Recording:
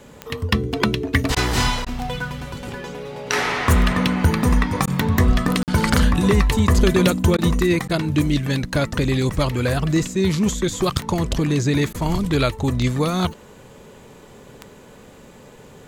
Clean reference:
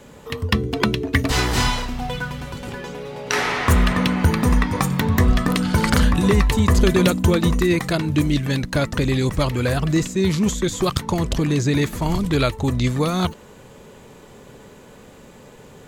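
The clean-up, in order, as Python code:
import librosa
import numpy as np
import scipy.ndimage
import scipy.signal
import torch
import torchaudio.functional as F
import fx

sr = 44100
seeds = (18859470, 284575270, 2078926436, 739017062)

y = fx.fix_declick_ar(x, sr, threshold=10.0)
y = fx.fix_interpolate(y, sr, at_s=(5.63,), length_ms=48.0)
y = fx.fix_interpolate(y, sr, at_s=(1.35, 1.85, 4.86, 7.37, 7.88, 11.93), length_ms=13.0)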